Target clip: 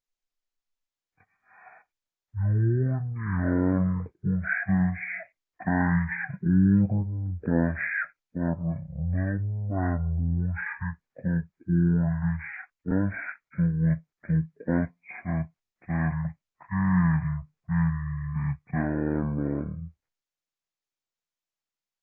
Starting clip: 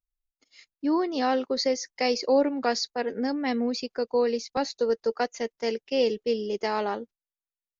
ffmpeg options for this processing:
-af "asetrate=15611,aresample=44100"

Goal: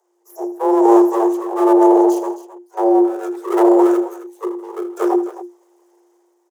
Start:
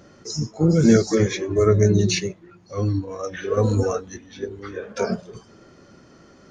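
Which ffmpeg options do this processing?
-af "afwtdn=0.0794,aeval=exprs='abs(val(0))':c=same,highshelf=f=6.3k:g=11,dynaudnorm=f=130:g=9:m=9dB,equalizer=f=250:t=o:w=1:g=-4,equalizer=f=500:t=o:w=1:g=4,equalizer=f=1k:t=o:w=1:g=-9,equalizer=f=2k:t=o:w=1:g=-11,equalizer=f=4k:t=o:w=1:g=-11,afreqshift=350,aecho=1:1:80|160|264:0.178|0.1|0.2,volume=1.5dB"

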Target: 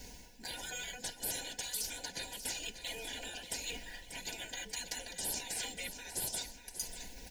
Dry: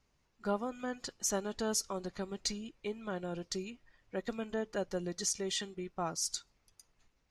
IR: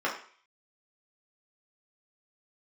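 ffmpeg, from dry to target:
-filter_complex "[0:a]afftfilt=real='re*lt(hypot(re,im),0.01)':imag='im*lt(hypot(re,im),0.01)':win_size=1024:overlap=0.75,crystalizer=i=2.5:c=0,areverse,acompressor=mode=upward:threshold=-39dB:ratio=2.5,areverse,aecho=1:1:4.1:0.67,asplit=2[a][b];[b]acrusher=samples=12:mix=1:aa=0.000001:lfo=1:lforange=19.2:lforate=0.99,volume=-8.5dB[c];[a][c]amix=inputs=2:normalize=0,asuperstop=centerf=1200:order=12:qfactor=2.7,aecho=1:1:589|1178|1767|2356|2945:0.282|0.124|0.0546|0.024|0.0106,volume=2dB"

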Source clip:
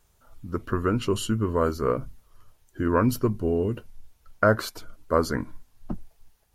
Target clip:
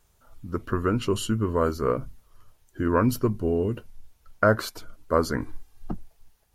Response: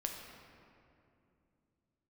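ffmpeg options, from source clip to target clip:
-filter_complex "[0:a]asettb=1/sr,asplit=3[a][b][c];[a]atrim=end=5.414[d];[b]atrim=start=5.41:end=5.91,asetpts=PTS-STARTPTS,afade=t=in:d=0.004:c=qsin,afade=t=out:st=0.496:d=0.004:c=qsin,aecho=1:1:2.5:0.96,atrim=end_sample=22050[e];[c]atrim=start=5.906[f];[d][e]acrossfade=d=0.004:c1=hsin:c2=qsin[g];[g][f]acrossfade=d=0.004:c1=qsin:c2=hsin"

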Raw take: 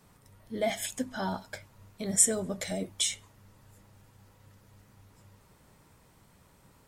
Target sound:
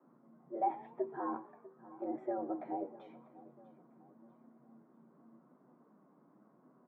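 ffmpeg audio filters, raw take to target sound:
-filter_complex "[0:a]asettb=1/sr,asplit=3[a][b][c];[a]atrim=end=1.414[d];[b]atrim=start=1.41:end=2.02,asetpts=PTS-STARTPTS,afade=t=in:d=0.004:c=qsin,afade=t=out:st=0.606:d=0.004:c=qsin,acompressor=threshold=-53dB:ratio=2.5[e];[c]atrim=start=2.016[f];[d][e]acrossfade=d=0.004:c1=hsin:c2=qsin[g];[g][f]acrossfade=d=0.004:c1=qsin:c2=hsin,asplit=2[h][i];[i]aecho=0:1:646|1292|1938:0.106|0.0434|0.0178[j];[h][j]amix=inputs=2:normalize=0,afreqshift=130,lowpass=f=1.2k:w=0.5412,lowpass=f=1.2k:w=1.3066,asplit=2[k][l];[l]asplit=4[m][n][o][p];[m]adelay=121,afreqshift=50,volume=-21.5dB[q];[n]adelay=242,afreqshift=100,volume=-26.4dB[r];[o]adelay=363,afreqshift=150,volume=-31.3dB[s];[p]adelay=484,afreqshift=200,volume=-36.1dB[t];[q][r][s][t]amix=inputs=4:normalize=0[u];[k][u]amix=inputs=2:normalize=0,flanger=delay=7.9:depth=2.5:regen=60:speed=0.89:shape=sinusoidal"

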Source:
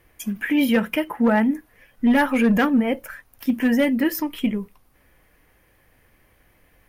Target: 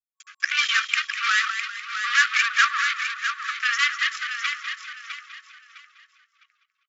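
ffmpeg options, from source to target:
-filter_complex "[0:a]aeval=exprs='0.299*(cos(1*acos(clip(val(0)/0.299,-1,1)))-cos(1*PI/2))+0.0422*(cos(7*acos(clip(val(0)/0.299,-1,1)))-cos(7*PI/2))':c=same,aeval=exprs='val(0)*gte(abs(val(0)),0.00562)':c=same,asplit=2[a][b];[b]asplit=5[c][d][e][f][g];[c]adelay=199,afreqshift=63,volume=-10dB[h];[d]adelay=398,afreqshift=126,volume=-16.2dB[i];[e]adelay=597,afreqshift=189,volume=-22.4dB[j];[f]adelay=796,afreqshift=252,volume=-28.6dB[k];[g]adelay=995,afreqshift=315,volume=-34.8dB[l];[h][i][j][k][l]amix=inputs=5:normalize=0[m];[a][m]amix=inputs=2:normalize=0,afftfilt=real='re*between(b*sr/4096,1100,7500)':imag='im*between(b*sr/4096,1100,7500)':win_size=4096:overlap=0.75,asplit=2[n][o];[o]aecho=0:1:657|1314|1971:0.398|0.107|0.029[p];[n][p]amix=inputs=2:normalize=0,volume=6dB"

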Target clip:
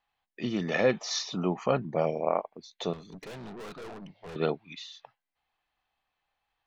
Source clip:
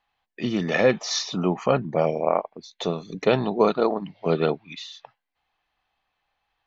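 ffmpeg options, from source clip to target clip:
-filter_complex "[0:a]asettb=1/sr,asplit=3[a][b][c];[a]atrim=end=2.934[d];[b]atrim=start=2.93:end=4.36,asetpts=PTS-STARTPTS,afade=t=in:d=0.004:c=qsin,afade=t=out:st=1.426:d=0.004:c=qsin,aeval=exprs='(tanh(56.2*val(0)+0.25)-tanh(0.25))/56.2':c=same[e];[c]atrim=start=4.356[f];[d][e]acrossfade=d=0.004:c1=hsin:c2=qsin[g];[g][f]acrossfade=d=0.004:c1=qsin:c2=hsin,volume=-5.5dB"

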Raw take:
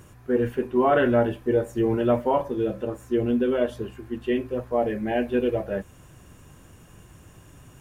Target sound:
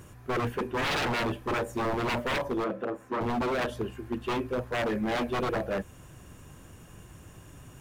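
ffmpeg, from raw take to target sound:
-filter_complex "[0:a]aeval=exprs='0.0668*(abs(mod(val(0)/0.0668+3,4)-2)-1)':c=same,asettb=1/sr,asplit=3[a][b][c];[a]atrim=end=2.644[d];[b]atrim=start=2.64:end=3.21,asetpts=PTS-STARTPTS,afade=t=in:d=0.004:c=qsin,afade=t=out:st=0.566:d=0.004:c=qsin,acrossover=split=170 2700:gain=0.126 1 0.224[e][f][g];[e][f][g]amix=inputs=3:normalize=0[h];[c]atrim=start=3.206[i];[d][h]acrossfade=d=0.004:c1=hsin:c2=qsin[j];[j][i]acrossfade=d=0.004:c1=qsin:c2=hsin"

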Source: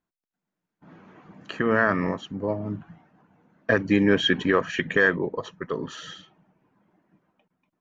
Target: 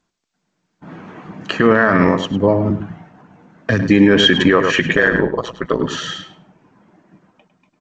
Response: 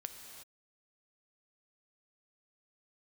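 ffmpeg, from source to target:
-filter_complex "[0:a]asettb=1/sr,asplit=3[a][b][c];[a]atrim=end=2.704[d];[b]atrim=start=2.7:end=3.82,asetpts=PTS-STARTPTS,afade=t=in:d=0.004:c=qsin,afade=t=out:st=1.116:d=0.004:c=qsin,acrossover=split=220|3000[e][f][g];[f]acompressor=threshold=-36dB:ratio=4[h];[e][h][g]amix=inputs=3:normalize=0[i];[c]atrim=start=3.816[j];[d][i]acrossfade=d=0.004:c1=hsin:c2=qsin[k];[k][j]acrossfade=d=0.004:c1=qsin:c2=hsin,asplit=3[l][m][n];[l]afade=t=out:st=4.94:d=0.02[o];[m]tremolo=f=120:d=0.788,afade=t=in:st=4.94:d=0.02,afade=t=out:st=5.8:d=0.02[p];[n]afade=t=in:st=5.8:d=0.02[q];[o][p][q]amix=inputs=3:normalize=0,asplit=2[r][s];[s]adelay=103,lowpass=f=4.6k:p=1,volume=-11dB,asplit=2[t][u];[u]adelay=103,lowpass=f=4.6k:p=1,volume=0.19,asplit=2[v][w];[w]adelay=103,lowpass=f=4.6k:p=1,volume=0.19[x];[t][v][x]amix=inputs=3:normalize=0[y];[r][y]amix=inputs=2:normalize=0,alimiter=level_in=15dB:limit=-1dB:release=50:level=0:latency=1,volume=-1dB" -ar 16000 -c:a g722

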